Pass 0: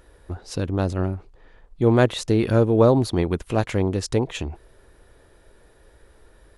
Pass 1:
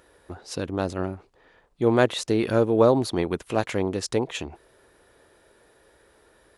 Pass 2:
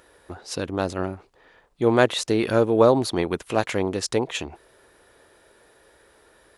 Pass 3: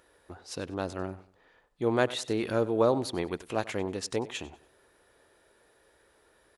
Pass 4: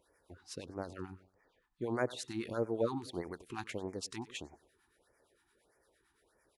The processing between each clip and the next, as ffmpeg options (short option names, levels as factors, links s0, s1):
-af "highpass=f=280:p=1"
-af "lowshelf=f=470:g=-4,volume=1.5"
-af "aecho=1:1:96|192|288:0.119|0.0392|0.0129,volume=0.398"
-filter_complex "[0:a]acrossover=split=910[s0][s1];[s0]aeval=exprs='val(0)*(1-0.7/2+0.7/2*cos(2*PI*8.8*n/s))':c=same[s2];[s1]aeval=exprs='val(0)*(1-0.7/2-0.7/2*cos(2*PI*8.8*n/s))':c=same[s3];[s2][s3]amix=inputs=2:normalize=0,afftfilt=real='re*(1-between(b*sr/1024,500*pow(3500/500,0.5+0.5*sin(2*PI*1.6*pts/sr))/1.41,500*pow(3500/500,0.5+0.5*sin(2*PI*1.6*pts/sr))*1.41))':imag='im*(1-between(b*sr/1024,500*pow(3500/500,0.5+0.5*sin(2*PI*1.6*pts/sr))/1.41,500*pow(3500/500,0.5+0.5*sin(2*PI*1.6*pts/sr))*1.41))':win_size=1024:overlap=0.75,volume=0.562"